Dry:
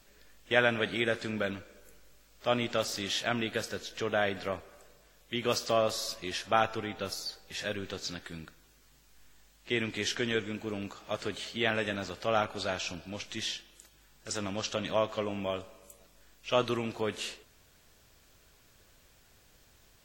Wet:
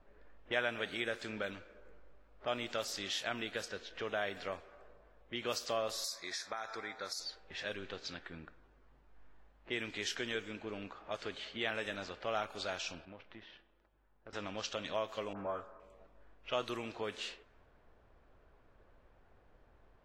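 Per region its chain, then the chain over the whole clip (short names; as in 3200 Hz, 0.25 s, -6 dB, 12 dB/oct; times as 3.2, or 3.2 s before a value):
6.04–7.2 Butterworth band-stop 2900 Hz, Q 2 + tilt +3.5 dB/oct + compressor 16:1, threshold -30 dBFS
13.05–14.33 G.711 law mismatch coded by A + compressor, threshold -42 dBFS + polynomial smoothing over 15 samples
15.33–15.8 resonant high shelf 2000 Hz -12 dB, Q 3 + dispersion highs, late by 56 ms, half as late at 2200 Hz
whole clip: bell 140 Hz -7.5 dB 2.4 oct; low-pass opened by the level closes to 970 Hz, open at -29 dBFS; compressor 1.5:1, threshold -53 dBFS; gain +3 dB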